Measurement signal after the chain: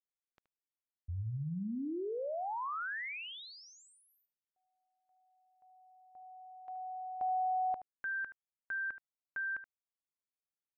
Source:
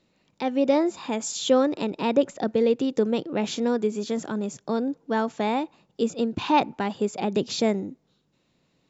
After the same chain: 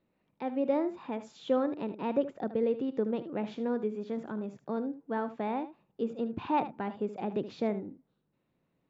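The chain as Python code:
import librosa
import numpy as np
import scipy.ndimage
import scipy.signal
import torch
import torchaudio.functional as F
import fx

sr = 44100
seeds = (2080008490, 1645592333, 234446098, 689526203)

p1 = scipy.signal.sosfilt(scipy.signal.butter(2, 2000.0, 'lowpass', fs=sr, output='sos'), x)
p2 = p1 + fx.echo_single(p1, sr, ms=75, db=-13.0, dry=0)
y = p2 * 10.0 ** (-8.0 / 20.0)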